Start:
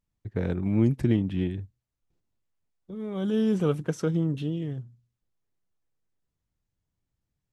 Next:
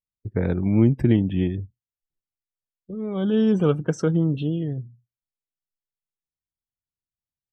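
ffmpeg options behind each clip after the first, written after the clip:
ffmpeg -i in.wav -af "afftdn=noise_reduction=24:noise_floor=-49,volume=5dB" out.wav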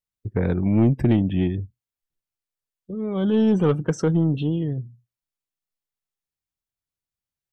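ffmpeg -i in.wav -af "asoftclip=type=tanh:threshold=-12dB,volume=2dB" out.wav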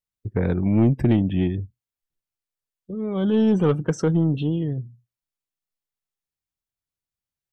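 ffmpeg -i in.wav -af anull out.wav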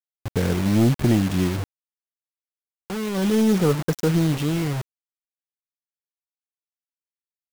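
ffmpeg -i in.wav -af "acrusher=bits=4:mix=0:aa=0.000001" out.wav

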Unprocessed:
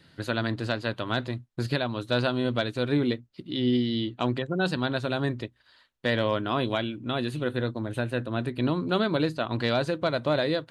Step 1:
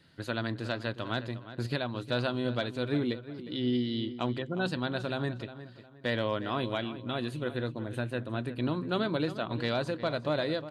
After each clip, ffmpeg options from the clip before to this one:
ffmpeg -i in.wav -filter_complex "[0:a]asplit=2[link_01][link_02];[link_02]adelay=358,lowpass=frequency=3600:poles=1,volume=-13dB,asplit=2[link_03][link_04];[link_04]adelay=358,lowpass=frequency=3600:poles=1,volume=0.33,asplit=2[link_05][link_06];[link_06]adelay=358,lowpass=frequency=3600:poles=1,volume=0.33[link_07];[link_01][link_03][link_05][link_07]amix=inputs=4:normalize=0,volume=-5dB" out.wav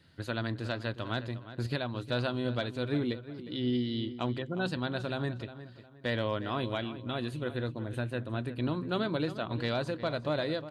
ffmpeg -i in.wav -af "equalizer=frequency=81:width_type=o:width=0.65:gain=8.5,volume=-1.5dB" out.wav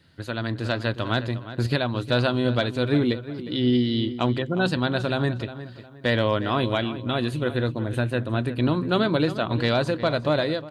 ffmpeg -i in.wav -af "dynaudnorm=framelen=370:gausssize=3:maxgain=6dB,volume=3.5dB" out.wav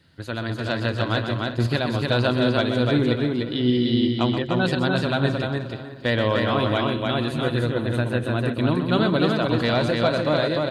ffmpeg -i in.wav -af "aecho=1:1:127|298|603:0.376|0.708|0.168" out.wav

